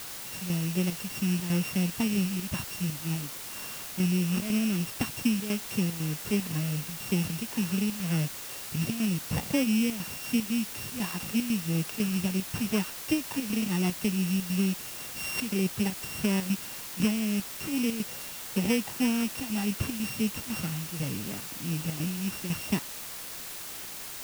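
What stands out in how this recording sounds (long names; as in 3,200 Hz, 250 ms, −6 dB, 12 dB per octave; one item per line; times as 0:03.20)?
a buzz of ramps at a fixed pitch in blocks of 16 samples
chopped level 2 Hz, depth 65%, duty 80%
a quantiser's noise floor 6 bits, dither triangular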